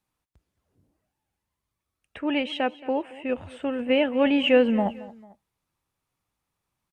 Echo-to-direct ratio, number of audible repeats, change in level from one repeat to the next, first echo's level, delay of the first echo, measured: -18.0 dB, 2, -7.0 dB, -19.0 dB, 223 ms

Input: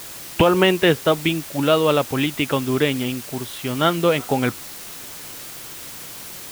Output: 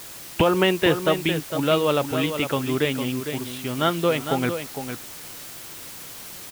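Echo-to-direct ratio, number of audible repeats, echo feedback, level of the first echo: -8.5 dB, 1, no regular repeats, -8.5 dB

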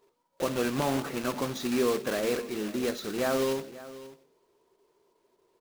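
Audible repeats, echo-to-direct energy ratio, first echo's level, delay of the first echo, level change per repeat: 1, -17.0 dB, -17.0 dB, 539 ms, no regular repeats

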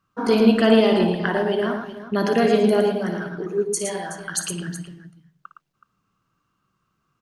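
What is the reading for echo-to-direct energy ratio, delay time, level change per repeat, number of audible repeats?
-4.5 dB, 57 ms, no regular repeats, 3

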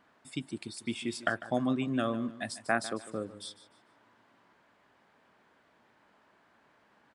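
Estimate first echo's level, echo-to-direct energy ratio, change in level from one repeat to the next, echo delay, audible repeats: -15.5 dB, -15.0 dB, -10.0 dB, 149 ms, 2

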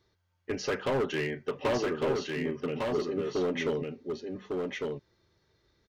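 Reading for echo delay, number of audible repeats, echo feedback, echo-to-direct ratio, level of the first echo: 1153 ms, 1, no regular repeats, -3.5 dB, -3.5 dB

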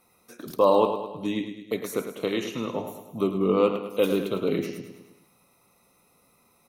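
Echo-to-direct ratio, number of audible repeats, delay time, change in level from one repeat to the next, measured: -8.0 dB, 5, 105 ms, -5.5 dB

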